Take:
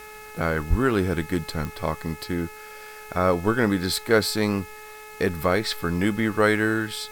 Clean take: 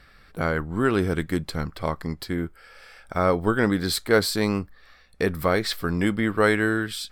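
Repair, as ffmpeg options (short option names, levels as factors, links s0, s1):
-filter_complex "[0:a]adeclick=t=4,bandreject=f=427.2:t=h:w=4,bandreject=f=854.4:t=h:w=4,bandreject=f=1281.6:t=h:w=4,bandreject=f=1708.8:t=h:w=4,bandreject=f=2136:t=h:w=4,bandreject=f=2563.2:t=h:w=4,asplit=3[s0][s1][s2];[s0]afade=t=out:st=0.69:d=0.02[s3];[s1]highpass=f=140:w=0.5412,highpass=f=140:w=1.3066,afade=t=in:st=0.69:d=0.02,afade=t=out:st=0.81:d=0.02[s4];[s2]afade=t=in:st=0.81:d=0.02[s5];[s3][s4][s5]amix=inputs=3:normalize=0,afwtdn=0.0035"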